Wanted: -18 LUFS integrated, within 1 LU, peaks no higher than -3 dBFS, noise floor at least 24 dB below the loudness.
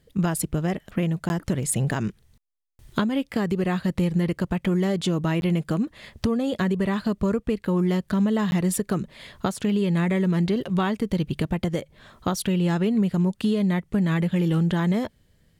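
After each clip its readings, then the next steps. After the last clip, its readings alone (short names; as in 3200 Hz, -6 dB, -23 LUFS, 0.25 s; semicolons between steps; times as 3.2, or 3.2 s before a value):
dropouts 3; longest dropout 11 ms; loudness -24.5 LUFS; peak -12.0 dBFS; loudness target -18.0 LUFS
-> interpolate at 1.29/5.41/8.51, 11 ms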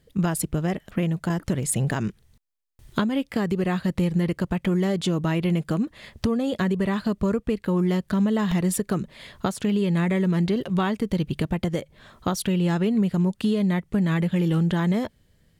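dropouts 0; loudness -24.5 LUFS; peak -12.0 dBFS; loudness target -18.0 LUFS
-> gain +6.5 dB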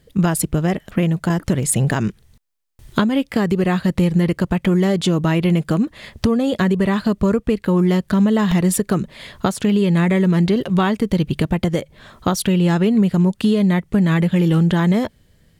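loudness -18.0 LUFS; peak -5.5 dBFS; noise floor -56 dBFS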